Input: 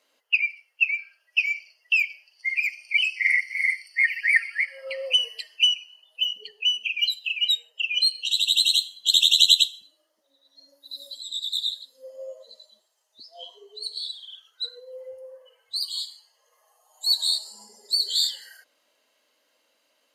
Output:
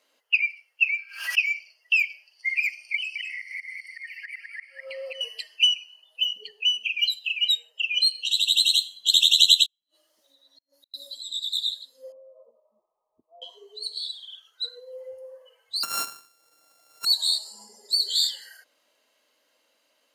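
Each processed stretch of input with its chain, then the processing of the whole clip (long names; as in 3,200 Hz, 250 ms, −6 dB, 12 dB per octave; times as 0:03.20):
0:00.84–0:01.46: high-pass filter 1,000 Hz 24 dB per octave + background raised ahead of every attack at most 100 dB per second
0:02.95–0:05.21: volume swells 461 ms + single-tap delay 204 ms −6 dB + downward compressor 2 to 1, threshold −34 dBFS
0:09.66–0:10.94: gate with flip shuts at −43 dBFS, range −39 dB + multiband upward and downward compressor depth 70%
0:12.12–0:13.42: downward compressor 12 to 1, threshold −47 dBFS + linear-phase brick-wall low-pass 1,300 Hz
0:15.83–0:17.05: samples sorted by size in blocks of 32 samples + high shelf with overshoot 4,100 Hz +6.5 dB, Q 1.5
whole clip: no processing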